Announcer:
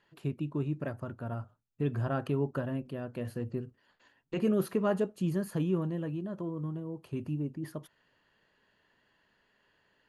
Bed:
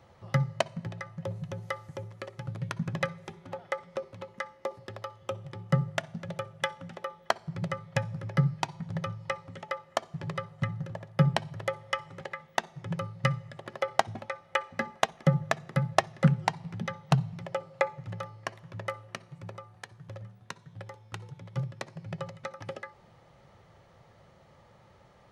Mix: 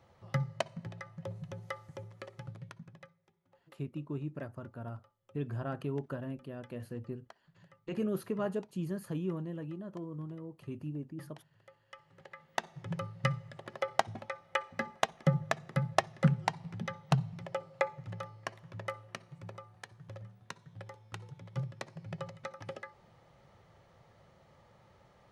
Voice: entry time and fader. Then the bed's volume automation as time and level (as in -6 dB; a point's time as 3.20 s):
3.55 s, -5.5 dB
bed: 2.42 s -6 dB
3.17 s -28.5 dB
11.66 s -28.5 dB
12.64 s -4 dB